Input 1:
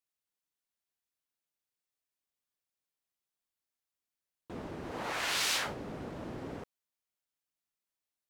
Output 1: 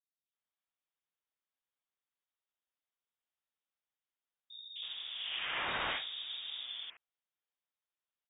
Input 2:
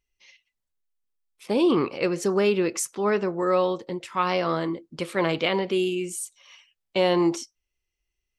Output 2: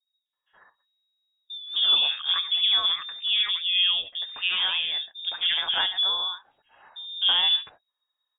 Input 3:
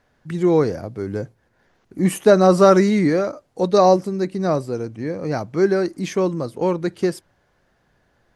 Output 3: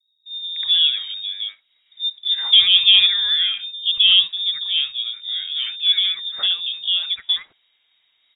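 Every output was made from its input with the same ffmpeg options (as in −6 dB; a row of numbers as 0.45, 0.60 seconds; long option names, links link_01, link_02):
-filter_complex "[0:a]acrossover=split=190|1400[link_01][link_02][link_03];[link_02]adelay=260[link_04];[link_03]adelay=330[link_05];[link_01][link_04][link_05]amix=inputs=3:normalize=0,aeval=exprs='0.794*(cos(1*acos(clip(val(0)/0.794,-1,1)))-cos(1*PI/2))+0.0708*(cos(2*acos(clip(val(0)/0.794,-1,1)))-cos(2*PI/2))':channel_layout=same,lowpass=frequency=3200:width_type=q:width=0.5098,lowpass=frequency=3200:width_type=q:width=0.6013,lowpass=frequency=3200:width_type=q:width=0.9,lowpass=frequency=3200:width_type=q:width=2.563,afreqshift=-3800"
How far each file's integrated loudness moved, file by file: −3.0, +2.5, +2.5 LU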